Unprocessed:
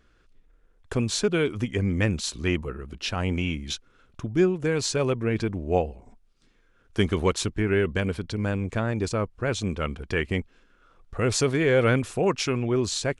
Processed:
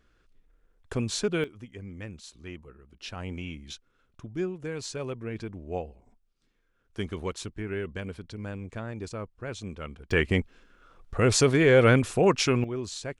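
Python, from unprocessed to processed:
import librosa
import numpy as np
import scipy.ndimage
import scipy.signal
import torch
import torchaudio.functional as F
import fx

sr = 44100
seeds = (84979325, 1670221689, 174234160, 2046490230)

y = fx.gain(x, sr, db=fx.steps((0.0, -4.0), (1.44, -16.5), (3.0, -10.0), (10.11, 2.0), (12.64, -9.0)))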